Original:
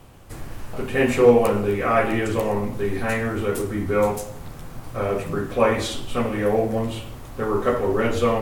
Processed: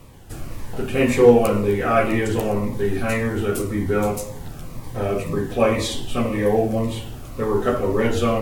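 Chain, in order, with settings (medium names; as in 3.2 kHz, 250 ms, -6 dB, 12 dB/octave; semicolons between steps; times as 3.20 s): 4.65–6.92 s: band-stop 1.4 kHz, Q 7.7; Shepard-style phaser falling 1.9 Hz; trim +3 dB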